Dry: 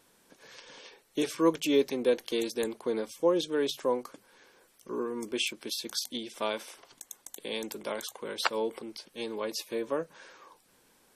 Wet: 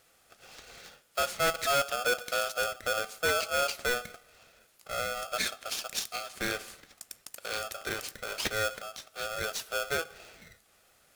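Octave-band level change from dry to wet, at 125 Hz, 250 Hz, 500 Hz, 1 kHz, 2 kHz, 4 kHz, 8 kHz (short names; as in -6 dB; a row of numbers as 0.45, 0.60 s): +2.0, -14.5, -4.0, +5.0, +8.5, +2.0, +5.0 dB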